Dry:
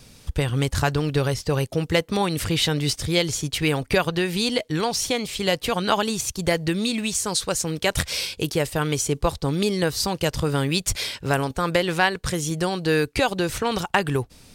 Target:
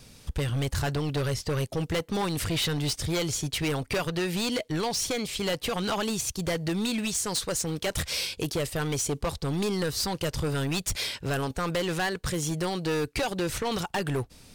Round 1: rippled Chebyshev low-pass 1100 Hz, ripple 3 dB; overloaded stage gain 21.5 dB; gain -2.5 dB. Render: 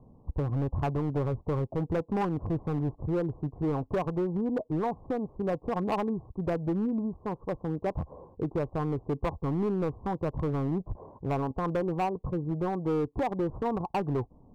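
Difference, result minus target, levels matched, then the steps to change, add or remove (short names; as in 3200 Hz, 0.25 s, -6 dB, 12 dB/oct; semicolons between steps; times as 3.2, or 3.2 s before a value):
1000 Hz band +3.0 dB
remove: rippled Chebyshev low-pass 1100 Hz, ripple 3 dB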